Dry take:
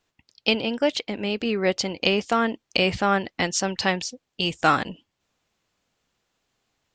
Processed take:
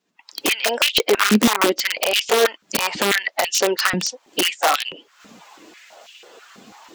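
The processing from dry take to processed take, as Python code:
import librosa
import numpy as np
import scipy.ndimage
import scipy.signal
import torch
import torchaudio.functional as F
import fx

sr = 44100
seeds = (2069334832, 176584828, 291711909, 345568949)

y = fx.spec_quant(x, sr, step_db=15)
y = fx.recorder_agc(y, sr, target_db=-8.5, rise_db_per_s=65.0, max_gain_db=30)
y = (np.mod(10.0 ** (9.5 / 20.0) * y + 1.0, 2.0) - 1.0) / 10.0 ** (9.5 / 20.0)
y = fx.filter_held_highpass(y, sr, hz=6.1, low_hz=210.0, high_hz=2800.0)
y = F.gain(torch.from_numpy(y), -2.5).numpy()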